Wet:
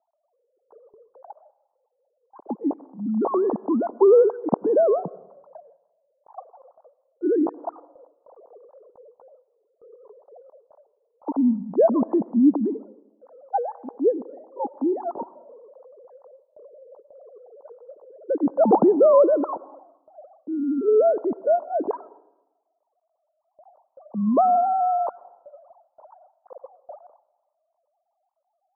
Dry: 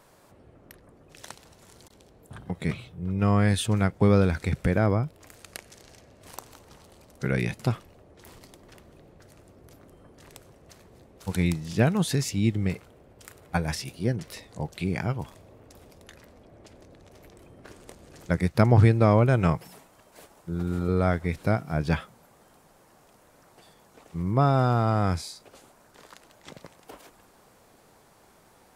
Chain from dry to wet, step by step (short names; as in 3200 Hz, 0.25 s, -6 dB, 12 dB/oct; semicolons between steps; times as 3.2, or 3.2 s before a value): sine-wave speech; HPF 250 Hz 12 dB/oct; gate with hold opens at -46 dBFS; steep low-pass 1000 Hz 48 dB/oct; reverb RT60 0.95 s, pre-delay 82 ms, DRR 20 dB; gain +5 dB